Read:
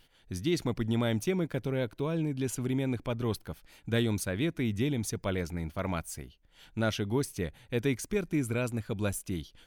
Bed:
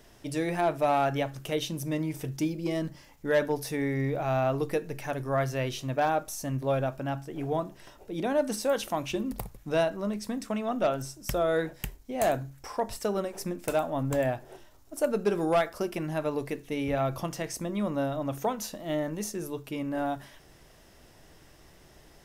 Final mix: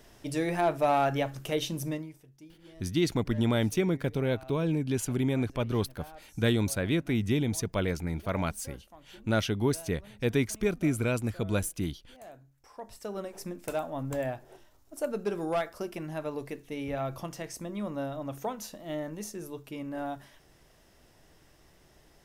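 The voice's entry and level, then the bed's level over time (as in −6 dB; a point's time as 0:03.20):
2.50 s, +2.5 dB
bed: 0:01.88 0 dB
0:02.25 −23 dB
0:12.28 −23 dB
0:13.28 −5 dB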